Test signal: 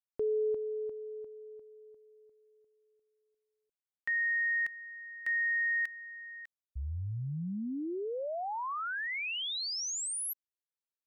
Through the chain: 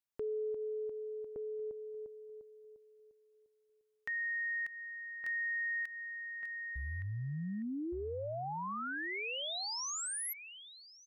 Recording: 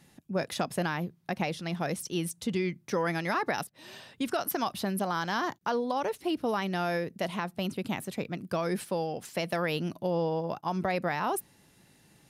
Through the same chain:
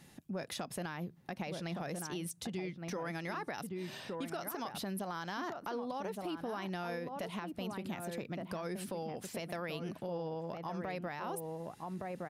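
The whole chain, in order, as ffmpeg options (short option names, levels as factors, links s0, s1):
-filter_complex "[0:a]asplit=2[s0][s1];[s1]adelay=1166,volume=0.447,highshelf=f=4000:g=-26.2[s2];[s0][s2]amix=inputs=2:normalize=0,acompressor=threshold=0.0141:ratio=4:attack=1.4:release=166:knee=6:detection=rms,volume=1.12"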